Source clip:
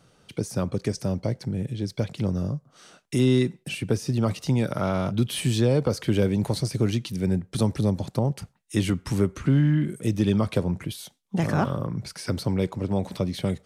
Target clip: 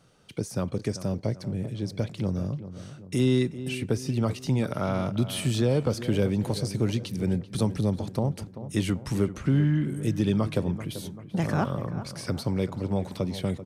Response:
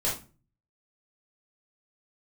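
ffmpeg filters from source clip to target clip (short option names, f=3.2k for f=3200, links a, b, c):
-filter_complex "[0:a]asplit=2[a][b];[b]adelay=388,lowpass=f=1.9k:p=1,volume=-12.5dB,asplit=2[c][d];[d]adelay=388,lowpass=f=1.9k:p=1,volume=0.51,asplit=2[e][f];[f]adelay=388,lowpass=f=1.9k:p=1,volume=0.51,asplit=2[g][h];[h]adelay=388,lowpass=f=1.9k:p=1,volume=0.51,asplit=2[i][j];[j]adelay=388,lowpass=f=1.9k:p=1,volume=0.51[k];[a][c][e][g][i][k]amix=inputs=6:normalize=0,volume=-2.5dB"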